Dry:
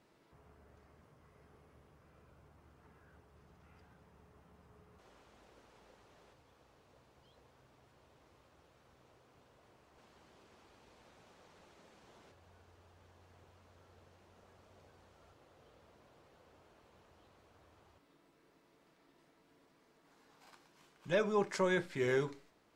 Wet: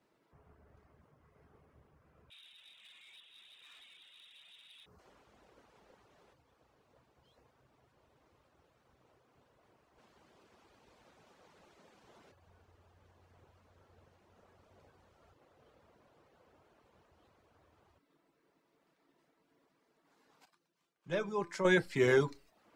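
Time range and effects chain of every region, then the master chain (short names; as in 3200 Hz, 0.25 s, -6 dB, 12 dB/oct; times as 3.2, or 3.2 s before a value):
2.3–4.86 tilt shelf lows -7 dB, about 1200 Hz + inverted band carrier 3800 Hz + sample leveller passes 2
20.45–21.65 bell 94 Hz +2.5 dB 1.9 oct + resonator 170 Hz, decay 0.8 s, mix 70%
whole clip: reverb removal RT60 0.55 s; three-band expander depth 70%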